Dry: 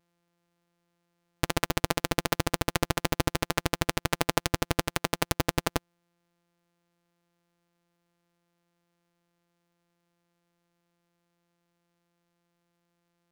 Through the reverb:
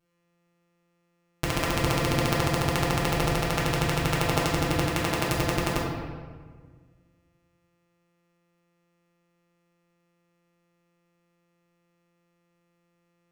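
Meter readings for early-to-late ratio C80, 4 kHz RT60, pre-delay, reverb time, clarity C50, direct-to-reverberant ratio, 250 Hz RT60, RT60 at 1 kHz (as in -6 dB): 3.0 dB, 1.0 s, 5 ms, 1.6 s, 0.5 dB, -4.5 dB, 2.0 s, 1.5 s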